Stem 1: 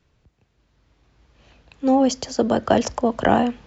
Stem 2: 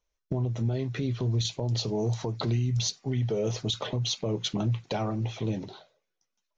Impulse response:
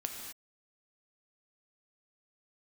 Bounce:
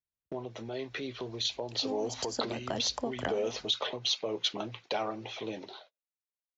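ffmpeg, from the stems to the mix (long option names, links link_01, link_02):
-filter_complex "[0:a]acompressor=threshold=-21dB:ratio=6,volume=-9dB[link_01];[1:a]acrossover=split=320 4600:gain=0.0794 1 0.0891[link_02][link_03][link_04];[link_02][link_03][link_04]amix=inputs=3:normalize=0,volume=-0.5dB,asplit=2[link_05][link_06];[link_06]apad=whole_len=161784[link_07];[link_01][link_07]sidechaincompress=threshold=-41dB:ratio=8:attack=34:release=155[link_08];[link_08][link_05]amix=inputs=2:normalize=0,agate=range=-31dB:threshold=-57dB:ratio=16:detection=peak,highshelf=frequency=3100:gain=8.5"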